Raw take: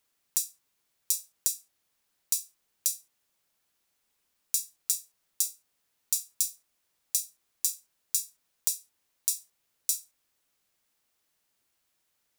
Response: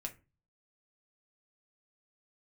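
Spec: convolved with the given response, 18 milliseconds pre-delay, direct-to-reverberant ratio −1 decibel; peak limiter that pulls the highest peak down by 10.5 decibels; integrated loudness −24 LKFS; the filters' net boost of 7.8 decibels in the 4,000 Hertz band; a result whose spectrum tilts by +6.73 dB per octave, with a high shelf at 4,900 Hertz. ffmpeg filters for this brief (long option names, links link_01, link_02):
-filter_complex "[0:a]equalizer=frequency=4000:width_type=o:gain=5.5,highshelf=frequency=4900:gain=8,alimiter=limit=-5dB:level=0:latency=1,asplit=2[link_01][link_02];[1:a]atrim=start_sample=2205,adelay=18[link_03];[link_02][link_03]afir=irnorm=-1:irlink=0,volume=2.5dB[link_04];[link_01][link_04]amix=inputs=2:normalize=0,volume=2dB"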